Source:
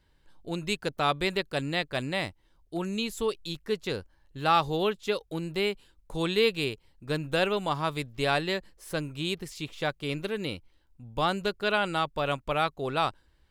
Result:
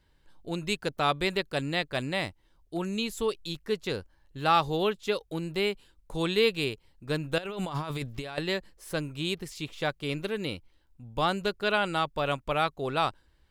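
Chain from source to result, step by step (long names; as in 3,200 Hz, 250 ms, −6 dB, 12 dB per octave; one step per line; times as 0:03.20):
0:07.38–0:08.38: compressor whose output falls as the input rises −35 dBFS, ratio −1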